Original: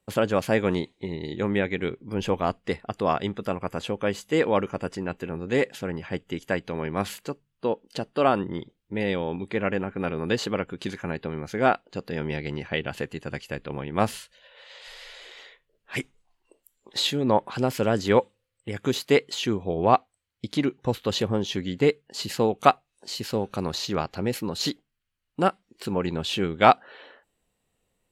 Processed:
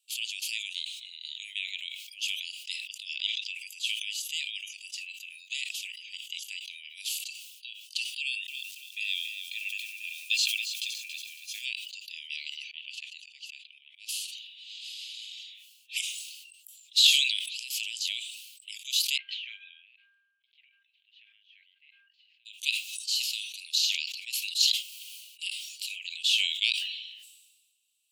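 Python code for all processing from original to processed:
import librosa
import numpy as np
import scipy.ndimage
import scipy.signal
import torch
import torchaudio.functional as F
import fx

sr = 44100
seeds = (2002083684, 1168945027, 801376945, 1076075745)

y = fx.chain(x, sr, fx.lowpass(hz=5600.0, slope=24),
    fx.high_shelf(hz=3000.0, db=7.0), at=(3.15, 3.55))
y = fx.chain(y, sr, fx.comb(ms=1.2, depth=0.77),
    fx.echo_crushed(ms=279, feedback_pct=35, bits=8, wet_db=-8), at=(8.2, 11.65))
y = fx.chain(y, sr, fx.lowpass(hz=5500.0, slope=12),
    fx.auto_swell(attack_ms=266.0), at=(12.64, 14.09))
y = fx.lowpass(y, sr, hz=1300.0, slope=24, at=(19.16, 22.45), fade=0.02)
y = fx.dmg_buzz(y, sr, base_hz=400.0, harmonics=4, level_db=-44.0, tilt_db=-6, odd_only=False, at=(19.16, 22.45), fade=0.02)
y = scipy.signal.sosfilt(scipy.signal.butter(12, 2600.0, 'highpass', fs=sr, output='sos'), y)
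y = fx.sustainer(y, sr, db_per_s=45.0)
y = y * 10.0 ** (5.5 / 20.0)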